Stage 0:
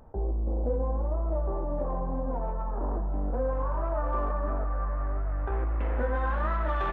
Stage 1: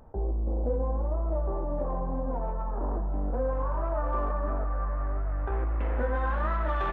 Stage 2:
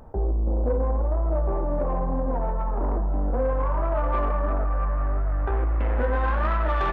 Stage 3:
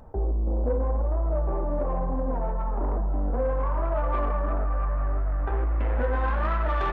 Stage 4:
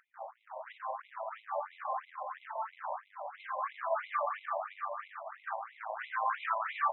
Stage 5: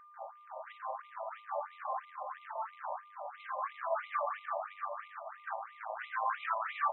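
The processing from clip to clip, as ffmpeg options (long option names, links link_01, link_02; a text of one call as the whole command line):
ffmpeg -i in.wav -af anull out.wav
ffmpeg -i in.wav -af "asoftclip=type=tanh:threshold=-22dB,volume=6.5dB" out.wav
ffmpeg -i in.wav -af "flanger=delay=1.1:depth=5.3:regen=-64:speed=1:shape=triangular,volume=2dB" out.wav
ffmpeg -i in.wav -filter_complex "[0:a]acrossover=split=2500[link_01][link_02];[link_02]acompressor=threshold=-57dB:ratio=4:attack=1:release=60[link_03];[link_01][link_03]amix=inputs=2:normalize=0,asoftclip=type=hard:threshold=-22.5dB,afftfilt=real='re*between(b*sr/1024,760*pow(2900/760,0.5+0.5*sin(2*PI*3*pts/sr))/1.41,760*pow(2900/760,0.5+0.5*sin(2*PI*3*pts/sr))*1.41)':imag='im*between(b*sr/1024,760*pow(2900/760,0.5+0.5*sin(2*PI*3*pts/sr))/1.41,760*pow(2900/760,0.5+0.5*sin(2*PI*3*pts/sr))*1.41)':win_size=1024:overlap=0.75,volume=2.5dB" out.wav
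ffmpeg -i in.wav -af "aeval=exprs='val(0)+0.00224*sin(2*PI*1200*n/s)':channel_layout=same,volume=-1.5dB" out.wav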